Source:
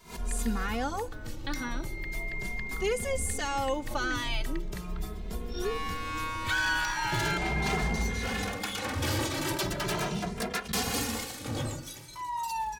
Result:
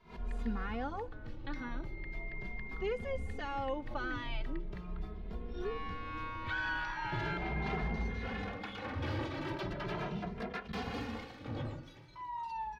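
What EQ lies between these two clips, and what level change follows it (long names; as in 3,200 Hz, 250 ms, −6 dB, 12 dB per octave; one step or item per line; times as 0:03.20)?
high-frequency loss of the air 320 metres
−5.5 dB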